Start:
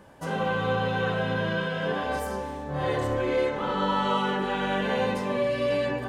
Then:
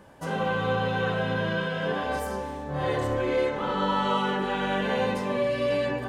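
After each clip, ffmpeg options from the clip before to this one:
-af anull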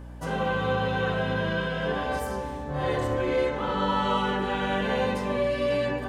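-af "aeval=exprs='val(0)+0.01*(sin(2*PI*60*n/s)+sin(2*PI*2*60*n/s)/2+sin(2*PI*3*60*n/s)/3+sin(2*PI*4*60*n/s)/4+sin(2*PI*5*60*n/s)/5)':c=same"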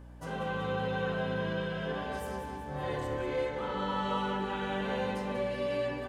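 -af "aecho=1:1:190|380|570|760|950|1140|1330:0.316|0.183|0.106|0.0617|0.0358|0.0208|0.012,volume=-8dB"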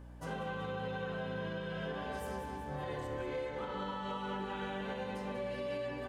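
-af "alimiter=level_in=4.5dB:limit=-24dB:level=0:latency=1:release=297,volume=-4.5dB,volume=-1.5dB"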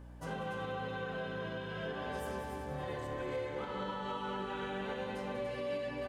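-af "aecho=1:1:290:0.398"

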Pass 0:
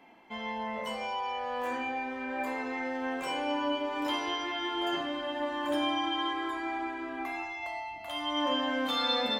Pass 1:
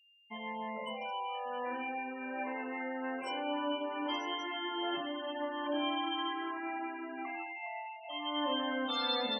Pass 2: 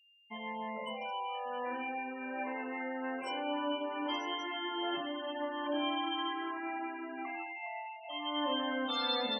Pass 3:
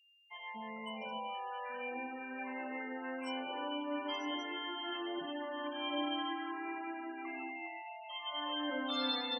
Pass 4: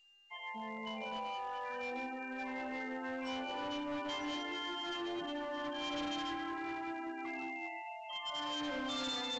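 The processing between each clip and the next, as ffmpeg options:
-af "afftfilt=real='re*gte(hypot(re,im),0.0224)':imag='im*gte(hypot(re,im),0.0224)':win_size=1024:overlap=0.75,aeval=exprs='val(0)+0.00112*sin(2*PI*2800*n/s)':c=same,bandreject=f=400.9:t=h:w=4,bandreject=f=801.8:t=h:w=4,bandreject=f=1.2027k:t=h:w=4,bandreject=f=1.6036k:t=h:w=4,bandreject=f=2.0045k:t=h:w=4,bandreject=f=2.4054k:t=h:w=4,bandreject=f=2.8063k:t=h:w=4,bandreject=f=3.2072k:t=h:w=4,bandreject=f=3.6081k:t=h:w=4,bandreject=f=4.009k:t=h:w=4,bandreject=f=4.4099k:t=h:w=4,bandreject=f=4.8108k:t=h:w=4,bandreject=f=5.2117k:t=h:w=4,bandreject=f=5.6126k:t=h:w=4,bandreject=f=6.0135k:t=h:w=4,bandreject=f=6.4144k:t=h:w=4,bandreject=f=6.8153k:t=h:w=4,bandreject=f=7.2162k:t=h:w=4,bandreject=f=7.6171k:t=h:w=4,bandreject=f=8.018k:t=h:w=4,bandreject=f=8.4189k:t=h:w=4,bandreject=f=8.8198k:t=h:w=4,bandreject=f=9.2207k:t=h:w=4,bandreject=f=9.6216k:t=h:w=4,bandreject=f=10.0225k:t=h:w=4,bandreject=f=10.4234k:t=h:w=4,bandreject=f=10.8243k:t=h:w=4,bandreject=f=11.2252k:t=h:w=4,bandreject=f=11.6261k:t=h:w=4,bandreject=f=12.027k:t=h:w=4,bandreject=f=12.4279k:t=h:w=4,volume=-4dB"
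-af anull
-filter_complex "[0:a]acrossover=split=750[a][b];[a]adelay=240[c];[c][b]amix=inputs=2:normalize=0,volume=-2dB"
-af "asoftclip=type=hard:threshold=-37.5dB,volume=1.5dB" -ar 16000 -c:a pcm_mulaw

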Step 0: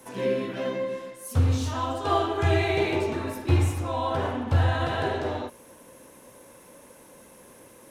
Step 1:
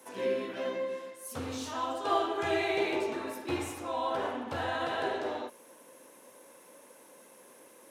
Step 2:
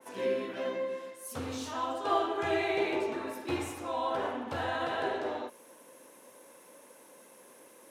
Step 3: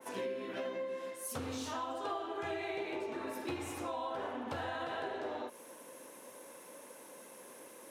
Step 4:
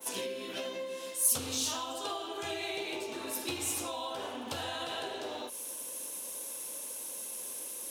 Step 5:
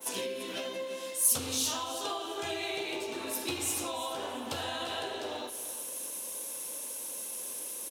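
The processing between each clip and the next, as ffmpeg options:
-af "highpass=290,volume=-4dB"
-af "adynamicequalizer=threshold=0.00501:dfrequency=3000:dqfactor=0.7:tfrequency=3000:tqfactor=0.7:attack=5:release=100:ratio=0.375:range=2:mode=cutabove:tftype=highshelf"
-af "acompressor=threshold=-39dB:ratio=6,volume=2.5dB"
-af "aexciter=amount=3.6:drive=7.1:freq=2.7k"
-af "aecho=1:1:340|680|1020:0.2|0.0619|0.0192,volume=1.5dB"

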